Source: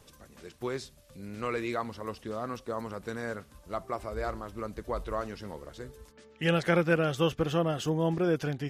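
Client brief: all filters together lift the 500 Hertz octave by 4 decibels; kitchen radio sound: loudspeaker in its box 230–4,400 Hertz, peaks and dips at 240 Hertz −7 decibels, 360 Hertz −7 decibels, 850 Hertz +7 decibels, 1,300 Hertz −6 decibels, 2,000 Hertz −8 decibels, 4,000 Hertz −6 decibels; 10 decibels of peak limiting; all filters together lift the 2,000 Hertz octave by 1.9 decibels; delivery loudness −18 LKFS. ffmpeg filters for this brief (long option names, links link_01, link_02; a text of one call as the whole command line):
ffmpeg -i in.wav -af "equalizer=frequency=500:width_type=o:gain=5.5,equalizer=frequency=2000:width_type=o:gain=8,alimiter=limit=-17.5dB:level=0:latency=1,highpass=230,equalizer=frequency=240:width_type=q:width=4:gain=-7,equalizer=frequency=360:width_type=q:width=4:gain=-7,equalizer=frequency=850:width_type=q:width=4:gain=7,equalizer=frequency=1300:width_type=q:width=4:gain=-6,equalizer=frequency=2000:width_type=q:width=4:gain=-8,equalizer=frequency=4000:width_type=q:width=4:gain=-6,lowpass=frequency=4400:width=0.5412,lowpass=frequency=4400:width=1.3066,volume=14.5dB" out.wav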